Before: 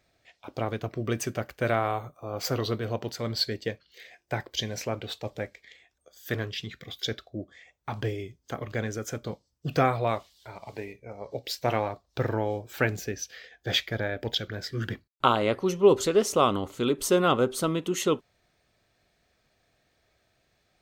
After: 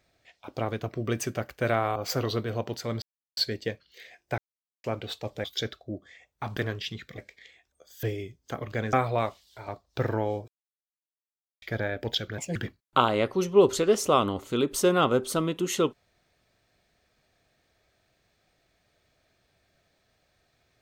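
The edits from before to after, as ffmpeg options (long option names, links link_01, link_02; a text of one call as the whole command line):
ffmpeg -i in.wav -filter_complex "[0:a]asplit=15[link_01][link_02][link_03][link_04][link_05][link_06][link_07][link_08][link_09][link_10][link_11][link_12][link_13][link_14][link_15];[link_01]atrim=end=1.962[link_16];[link_02]atrim=start=2.308:end=3.37,asetpts=PTS-STARTPTS,afade=type=out:start_time=1.058:duration=0.004:curve=hsin,apad=pad_dur=0.35[link_17];[link_03]atrim=start=3.37:end=4.38,asetpts=PTS-STARTPTS,afade=type=in:duration=0.004:curve=hsin,afade=type=out:start_time=1.006:duration=0.004:curve=hsin[link_18];[link_04]atrim=start=4.38:end=4.84,asetpts=PTS-STARTPTS,volume=0[link_19];[link_05]atrim=start=4.84:end=5.442,asetpts=PTS-STARTPTS,afade=type=in:duration=0.004:curve=hsin[link_20];[link_06]atrim=start=6.898:end=8.032[link_21];[link_07]atrim=start=6.288:end=6.902[link_22];[link_08]atrim=start=5.438:end=6.292[link_23];[link_09]atrim=start=8.028:end=8.932[link_24];[link_10]atrim=start=9.818:end=10.572[link_25];[link_11]atrim=start=11.878:end=12.68,asetpts=PTS-STARTPTS,afade=type=out:start_time=0.798:duration=0.004:curve=hsin[link_26];[link_12]atrim=start=12.68:end=13.82,asetpts=PTS-STARTPTS,volume=0[link_27];[link_13]atrim=start=13.82:end=14.584,asetpts=PTS-STARTPTS,afade=type=in:duration=0.004:curve=hsin[link_28];[link_14]atrim=start=14.58:end=14.83,asetpts=PTS-STARTPTS,asetrate=62622,aresample=44100,atrim=end_sample=7764,asetpts=PTS-STARTPTS[link_29];[link_15]atrim=start=14.826[link_30];[link_17][link_18][link_19][link_20]concat=n=4:v=0:a=1[link_31];[link_16][link_31]acrossfade=duration=0.004:curve1=hsin:curve2=hsin[link_32];[link_32][link_21]acrossfade=duration=0.004:curve1=hsin:curve2=hsin[link_33];[link_33][link_22]acrossfade=duration=0.004:curve1=hsin:curve2=hsin[link_34];[link_34][link_23]acrossfade=duration=0.004:curve1=hsin:curve2=hsin[link_35];[link_35][link_24]acrossfade=duration=0.004:curve1=hsin:curve2=hsin[link_36];[link_36][link_25]acrossfade=duration=0.004:curve1=hsin:curve2=hsin[link_37];[link_26][link_27][link_28]concat=n=3:v=0:a=1[link_38];[link_37][link_38]acrossfade=duration=0.004:curve1=hsin:curve2=hsin[link_39];[link_39][link_29]acrossfade=duration=0.004:curve1=hsin:curve2=hsin[link_40];[link_40][link_30]acrossfade=duration=0.004:curve1=hsin:curve2=hsin" out.wav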